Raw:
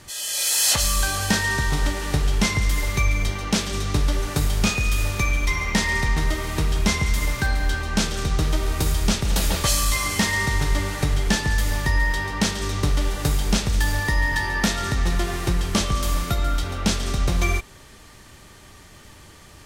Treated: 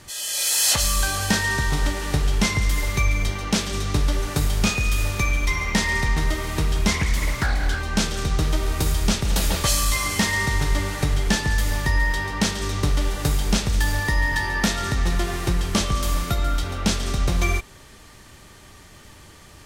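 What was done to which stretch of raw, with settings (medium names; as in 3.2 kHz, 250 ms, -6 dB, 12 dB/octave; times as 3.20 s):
6.91–7.79 s: loudspeaker Doppler distortion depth 0.49 ms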